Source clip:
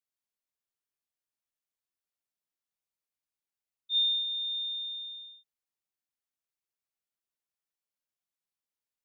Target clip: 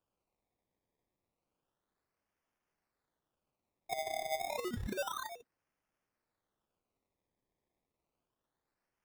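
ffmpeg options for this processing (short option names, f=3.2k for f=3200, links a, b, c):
-af "acompressor=threshold=-41dB:ratio=16,aphaser=in_gain=1:out_gain=1:delay=2.2:decay=0.63:speed=1.5:type=sinusoidal,acrusher=samples=21:mix=1:aa=0.000001:lfo=1:lforange=21:lforate=0.3,volume=2dB"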